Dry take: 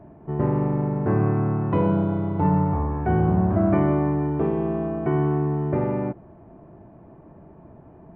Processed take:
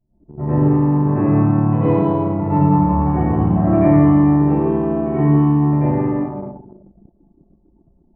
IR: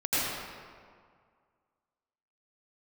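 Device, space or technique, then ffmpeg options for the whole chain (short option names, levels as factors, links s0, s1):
stairwell: -filter_complex "[0:a]bandreject=f=1500:w=9.4[s0];[1:a]atrim=start_sample=2205[s1];[s0][s1]afir=irnorm=-1:irlink=0,anlmdn=1580,volume=0.501"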